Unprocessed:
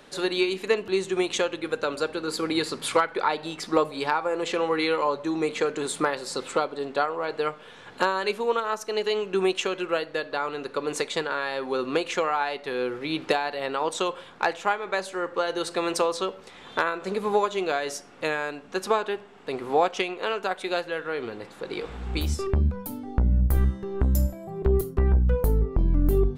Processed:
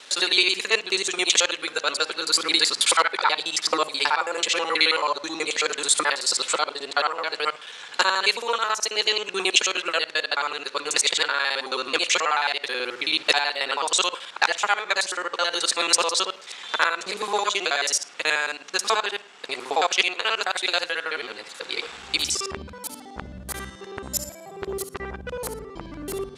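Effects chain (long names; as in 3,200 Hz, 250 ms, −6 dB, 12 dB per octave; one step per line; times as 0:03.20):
reversed piece by piece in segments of 54 ms
meter weighting curve ITU-R 468
level +2.5 dB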